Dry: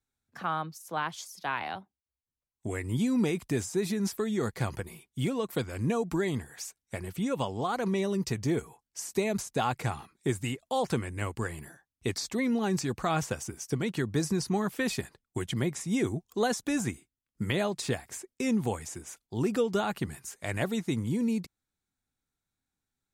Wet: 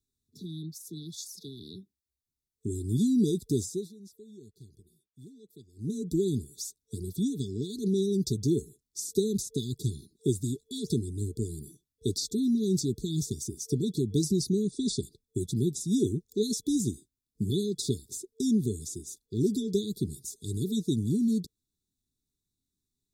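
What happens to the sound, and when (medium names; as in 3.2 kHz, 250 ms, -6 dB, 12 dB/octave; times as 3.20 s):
3.48–6.17 s: dip -21.5 dB, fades 0.41 s equal-power
14.63–15.03 s: brick-wall FIR low-pass 10 kHz
whole clip: FFT band-reject 450–3400 Hz; trim +2.5 dB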